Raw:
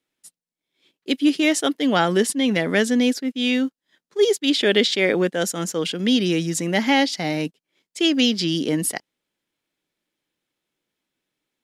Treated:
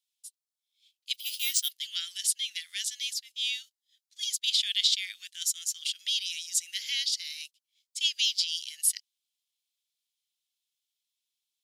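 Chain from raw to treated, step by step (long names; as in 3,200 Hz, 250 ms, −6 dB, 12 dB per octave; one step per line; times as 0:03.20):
0:01.14–0:01.71: bad sample-rate conversion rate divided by 3×, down none, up hold
inverse Chebyshev high-pass filter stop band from 740 Hz, stop band 70 dB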